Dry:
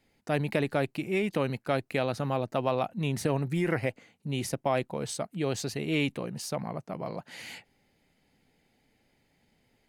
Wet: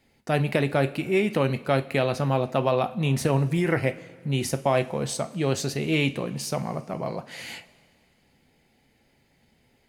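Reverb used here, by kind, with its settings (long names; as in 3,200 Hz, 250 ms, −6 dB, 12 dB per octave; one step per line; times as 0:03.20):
coupled-rooms reverb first 0.29 s, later 2.2 s, from −18 dB, DRR 8.5 dB
level +4.5 dB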